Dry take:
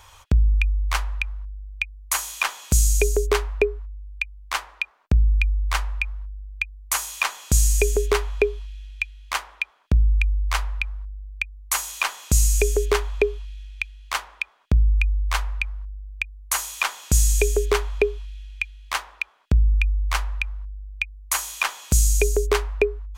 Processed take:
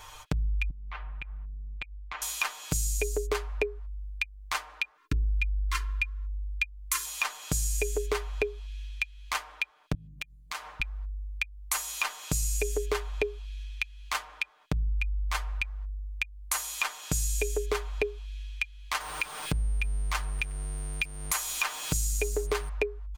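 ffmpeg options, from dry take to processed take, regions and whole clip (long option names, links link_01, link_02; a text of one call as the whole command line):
ffmpeg -i in.wav -filter_complex "[0:a]asettb=1/sr,asplit=3[link_01][link_02][link_03];[link_01]atrim=end=0.704[link_04];[link_02]atrim=start=0.7:end=2.22,asetpts=PTS-STARTPTS,afade=type=in:duration=0.004:curve=qsin,afade=type=out:start_time=1.516:duration=0.004:curve=qsin,lowpass=frequency=3000:width=0.5412,lowpass=frequency=3000:width=1.3066,acompressor=threshold=-35dB:ratio=10:attack=3.2:release=140:knee=1:detection=peak[link_05];[link_03]atrim=start=2.216[link_06];[link_04][link_05]acrossfade=duration=0.004:curve1=hsin:curve2=qsin[link_07];[link_07][link_06]acrossfade=duration=0.004:curve1=qsin:curve2=hsin,asettb=1/sr,asplit=3[link_08][link_09][link_10];[link_08]atrim=end=4.974[link_11];[link_09]atrim=start=4.97:end=7.06,asetpts=PTS-STARTPTS,afade=type=in:duration=0.004:curve=qsin,afade=type=out:start_time=2.086:duration=0.004:curve=qsin,asuperstop=centerf=650:order=12:qfactor=1.2,aecho=1:1:2.9:0.66,atrim=end_sample=92169,bandreject=frequency=84.67:width_type=h:width=4,bandreject=frequency=169.34:width_type=h:width=4,bandreject=frequency=254.01:width_type=h:width=4,bandreject=frequency=338.68:width_type=h:width=4,bandreject=frequency=423.35:width_type=h:width=4,bandreject=frequency=508.02:width_type=h:width=4,bandreject=frequency=592.69:width_type=h:width=4,bandreject=frequency=677.36:width_type=h:width=4[link_12];[link_10]atrim=start=7.056[link_13];[link_11][link_12]acrossfade=duration=0.004:curve1=hsin:curve2=qsin[link_14];[link_14][link_13]acrossfade=duration=0.004:curve1=qsin:curve2=hsin,asettb=1/sr,asplit=3[link_15][link_16][link_17];[link_15]atrim=end=9.944[link_18];[link_16]atrim=start=9.94:end=10.8,asetpts=PTS-STARTPTS,afade=type=in:duration=0.004:curve=qsin,afade=type=out:start_time=0.856:duration=0.004:curve=qsin,highpass=frequency=120:width=0.5412,highpass=frequency=120:width=1.3066,acompressor=threshold=-37dB:ratio=3:attack=3.2:release=140:knee=1:detection=peak[link_19];[link_17]atrim=start=10.796[link_20];[link_18][link_19]acrossfade=duration=0.004:curve1=hsin:curve2=qsin[link_21];[link_21][link_20]acrossfade=duration=0.004:curve1=qsin:curve2=hsin,asettb=1/sr,asplit=3[link_22][link_23][link_24];[link_22]atrim=end=19.004[link_25];[link_23]atrim=start=19:end=22.69,asetpts=PTS-STARTPTS,afade=type=in:duration=0.004:curve=qsin,afade=type=out:start_time=3.686:duration=0.004:curve=qsin,aeval=exprs='val(0)+0.5*0.0211*sgn(val(0))':channel_layout=same,aeval=exprs='val(0)+0.00447*sin(2*PI*8800*n/s)':channel_layout=same[link_26];[link_24]atrim=start=22.686[link_27];[link_25][link_26]acrossfade=duration=0.004:curve1=hsin:curve2=qsin[link_28];[link_28][link_27]acrossfade=duration=0.004:curve1=qsin:curve2=hsin,aecho=1:1:6.6:0.82,acompressor=threshold=-31dB:ratio=2.5" out.wav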